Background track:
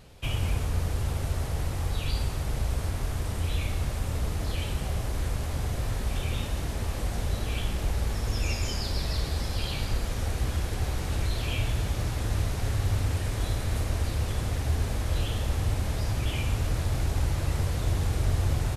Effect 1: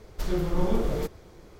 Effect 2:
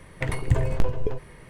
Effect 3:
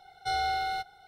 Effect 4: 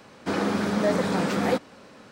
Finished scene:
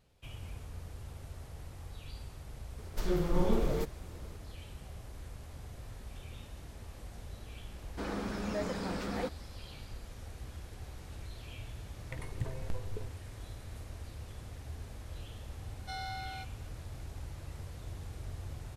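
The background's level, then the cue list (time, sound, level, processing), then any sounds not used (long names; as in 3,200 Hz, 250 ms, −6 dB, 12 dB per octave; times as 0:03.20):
background track −17 dB
0:02.78: mix in 1 −3.5 dB
0:07.71: mix in 4 −12.5 dB
0:11.90: mix in 2 −16 dB
0:15.62: mix in 3 −9.5 dB + high-pass filter 820 Hz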